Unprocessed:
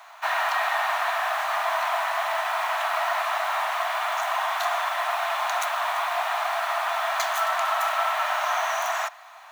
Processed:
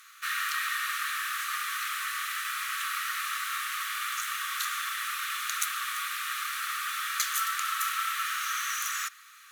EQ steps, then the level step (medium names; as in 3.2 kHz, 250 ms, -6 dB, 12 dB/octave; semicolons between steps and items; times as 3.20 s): brick-wall FIR high-pass 1.1 kHz; peaking EQ 11 kHz +14.5 dB 1.9 oct; -6.0 dB